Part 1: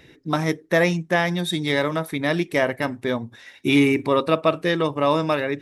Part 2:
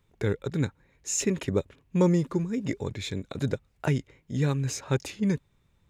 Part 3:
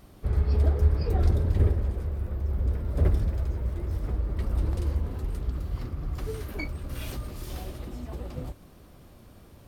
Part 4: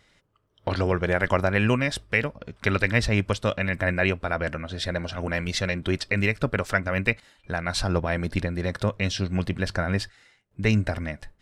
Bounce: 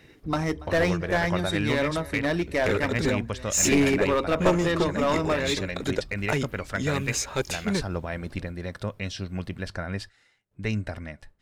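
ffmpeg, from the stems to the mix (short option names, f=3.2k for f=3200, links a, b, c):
-filter_complex "[0:a]lowpass=9k,bandreject=f=3.4k:w=6.3,volume=-10dB,asplit=2[a][b];[b]volume=-21dB[c];[1:a]highpass=f=510:p=1,adelay=2450,volume=0dB[d];[2:a]acompressor=threshold=-30dB:ratio=6,volume=-18dB[e];[3:a]volume=-13.5dB[f];[c]aecho=0:1:284:1[g];[a][d][e][f][g]amix=inputs=5:normalize=0,acontrast=78,aeval=exprs='clip(val(0),-1,0.112)':c=same"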